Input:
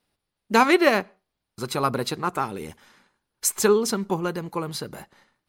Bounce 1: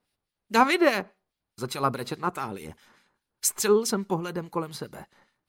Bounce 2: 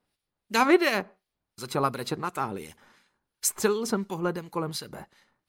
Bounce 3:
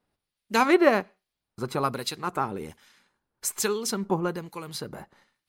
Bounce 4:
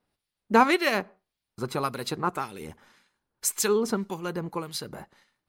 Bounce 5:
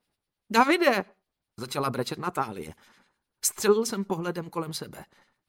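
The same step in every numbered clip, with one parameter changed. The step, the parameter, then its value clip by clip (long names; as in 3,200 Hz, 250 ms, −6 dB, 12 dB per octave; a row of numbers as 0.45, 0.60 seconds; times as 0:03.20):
two-band tremolo in antiphase, speed: 4.8, 2.8, 1.2, 1.8, 10 Hertz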